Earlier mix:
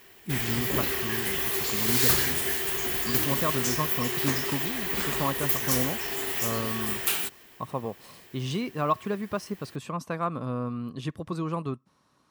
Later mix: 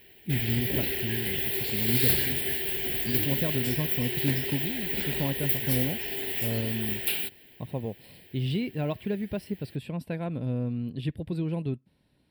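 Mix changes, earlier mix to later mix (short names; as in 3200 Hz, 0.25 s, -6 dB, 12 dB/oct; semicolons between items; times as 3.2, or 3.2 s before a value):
speech: remove HPF 160 Hz 6 dB/oct; master: add fixed phaser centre 2800 Hz, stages 4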